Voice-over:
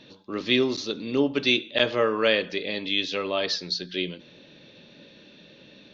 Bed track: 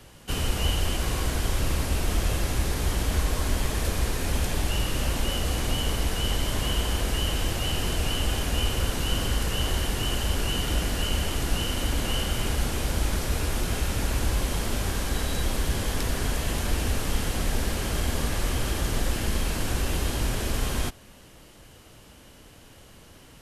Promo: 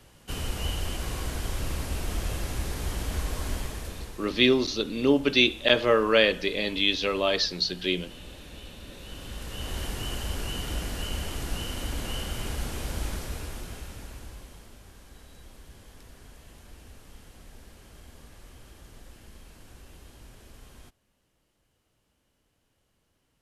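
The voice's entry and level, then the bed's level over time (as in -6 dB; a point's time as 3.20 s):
3.90 s, +1.5 dB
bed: 3.54 s -5.5 dB
4.44 s -20 dB
8.88 s -20 dB
9.84 s -6 dB
13.07 s -6 dB
14.79 s -23 dB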